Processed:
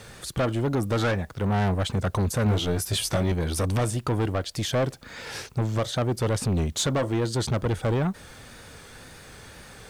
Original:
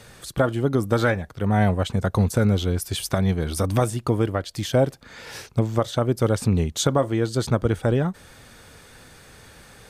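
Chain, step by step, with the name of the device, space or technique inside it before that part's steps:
compact cassette (soft clipping −22 dBFS, distortion −8 dB; low-pass filter 12,000 Hz 12 dB per octave; tape wow and flutter; white noise bed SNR 40 dB)
0:02.44–0:03.32: double-tracking delay 18 ms −3 dB
level +2 dB

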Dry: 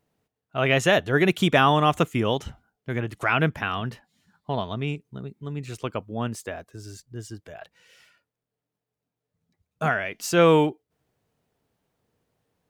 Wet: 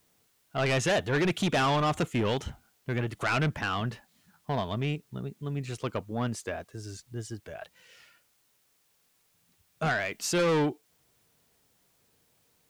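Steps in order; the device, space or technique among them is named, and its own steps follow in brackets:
compact cassette (soft clipping −22 dBFS, distortion −7 dB; low-pass filter 10,000 Hz; tape wow and flutter; white noise bed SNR 38 dB)
0:09.99–0:10.41: high-shelf EQ 11,000 Hz +5.5 dB

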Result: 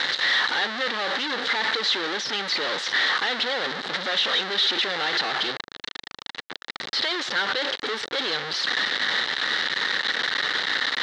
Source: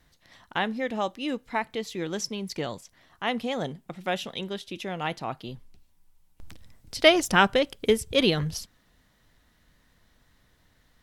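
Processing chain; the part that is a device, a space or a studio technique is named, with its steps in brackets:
home computer beeper (sign of each sample alone; loudspeaker in its box 620–4,200 Hz, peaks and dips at 660 Hz −9 dB, 1,000 Hz −6 dB, 1,800 Hz +5 dB, 2,500 Hz −8 dB, 3,900 Hz +7 dB)
level +9 dB

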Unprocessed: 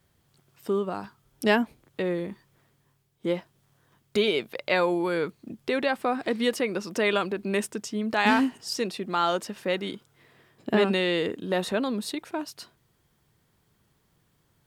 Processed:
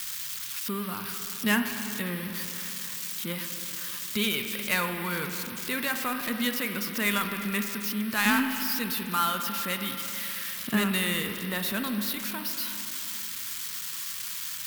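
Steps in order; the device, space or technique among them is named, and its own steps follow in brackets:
budget class-D amplifier (gap after every zero crossing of 0.064 ms; spike at every zero crossing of −20 dBFS)
flat-topped bell 500 Hz −12.5 dB
spring reverb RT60 3.2 s, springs 39/53 ms, chirp 70 ms, DRR 5.5 dB

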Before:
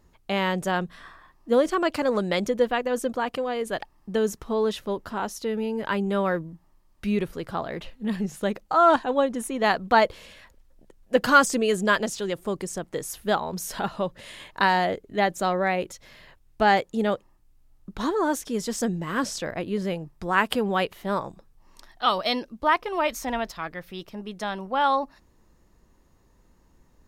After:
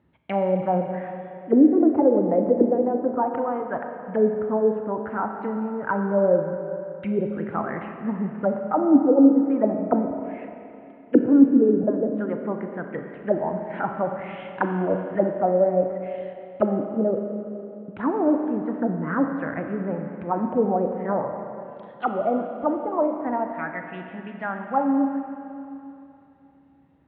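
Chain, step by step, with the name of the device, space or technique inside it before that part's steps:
0:11.83–0:12.71: high-pass filter 150 Hz 24 dB per octave
envelope filter bass rig (envelope-controlled low-pass 300–3,800 Hz down, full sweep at −17.5 dBFS; loudspeaker in its box 79–2,200 Hz, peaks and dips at 150 Hz +4 dB, 280 Hz +7 dB, 420 Hz −4 dB, 1,100 Hz −7 dB, 1,700 Hz −3 dB)
four-comb reverb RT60 2.9 s, combs from 29 ms, DRR 4.5 dB
level −2 dB

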